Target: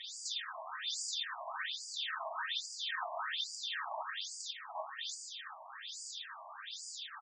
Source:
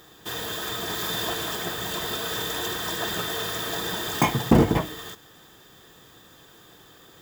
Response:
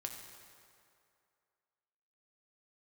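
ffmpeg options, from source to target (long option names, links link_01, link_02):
-filter_complex "[0:a]asettb=1/sr,asplit=3[link_01][link_02][link_03];[link_01]atrim=end=1.474[link_04];[link_02]atrim=start=1.47:end=4.01,asetpts=PTS-STARTPTS,afade=type=in:duration=0.004:curve=qsin,afade=type=out:start_time=2.536:duration=0.004:curve=qsin,acrossover=split=4200[link_05][link_06];[link_06]acompressor=threshold=-48dB:ratio=4:attack=1:release=60[link_07];[link_05][link_07]amix=inputs=2:normalize=0[link_08];[link_03]atrim=start=4.006[link_09];[link_04][link_08]acrossfade=duration=0.004:curve1=hsin:curve2=qsin[link_10];[link_10][link_09]acrossfade=duration=0.004:curve1=qsin:curve2=hsin,aemphasis=mode=production:type=cd,acompressor=threshold=-41dB:ratio=6,asplit=2[link_11][link_12];[link_12]adelay=116.6,volume=-12dB,highshelf=frequency=4000:gain=-2.62[link_13];[link_11][link_13]amix=inputs=2:normalize=0[link_14];[1:a]atrim=start_sample=2205,afade=type=out:start_time=0.21:duration=0.01,atrim=end_sample=9702[link_15];[link_14][link_15]afir=irnorm=-1:irlink=0,afftfilt=real='re*between(b*sr/1024,800*pow(6600/800,0.5+0.5*sin(2*PI*1.2*pts/sr))/1.41,800*pow(6600/800,0.5+0.5*sin(2*PI*1.2*pts/sr))*1.41)':imag='im*between(b*sr/1024,800*pow(6600/800,0.5+0.5*sin(2*PI*1.2*pts/sr))/1.41,800*pow(6600/800,0.5+0.5*sin(2*PI*1.2*pts/sr))*1.41)':win_size=1024:overlap=0.75,volume=13dB"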